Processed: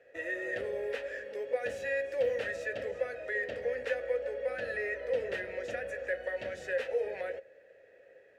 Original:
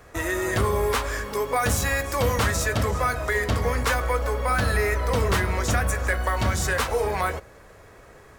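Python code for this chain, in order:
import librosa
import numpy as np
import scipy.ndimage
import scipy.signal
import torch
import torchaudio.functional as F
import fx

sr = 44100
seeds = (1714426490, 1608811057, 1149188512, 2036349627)

y = fx.vowel_filter(x, sr, vowel='e')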